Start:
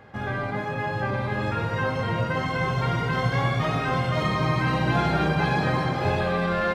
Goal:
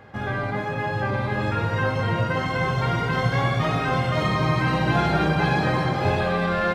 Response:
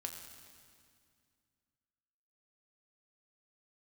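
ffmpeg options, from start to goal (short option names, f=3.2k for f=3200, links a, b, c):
-filter_complex "[0:a]asplit=2[a][b];[1:a]atrim=start_sample=2205,asetrate=52920,aresample=44100[c];[b][c]afir=irnorm=-1:irlink=0,volume=-7dB[d];[a][d]amix=inputs=2:normalize=0"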